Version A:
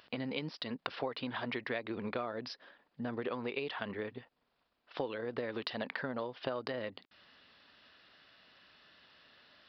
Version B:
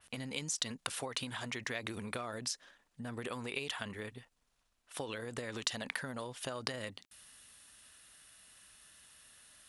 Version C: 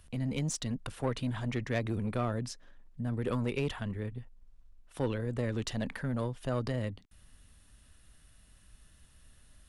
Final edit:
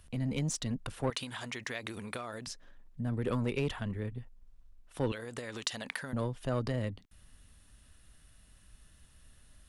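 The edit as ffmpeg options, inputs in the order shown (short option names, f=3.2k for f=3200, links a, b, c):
-filter_complex "[1:a]asplit=2[a][b];[2:a]asplit=3[c][d][e];[c]atrim=end=1.102[f];[a]atrim=start=1.098:end=2.472[g];[d]atrim=start=2.468:end=5.122[h];[b]atrim=start=5.118:end=6.132[i];[e]atrim=start=6.128[j];[f][g]acrossfade=d=0.004:c1=hsin:c2=hsin[k];[k][h]acrossfade=d=0.004:c1=hsin:c2=hsin[l];[l][i]acrossfade=d=0.004:c1=hsin:c2=hsin[m];[m][j]acrossfade=d=0.004:c1=hsin:c2=hsin"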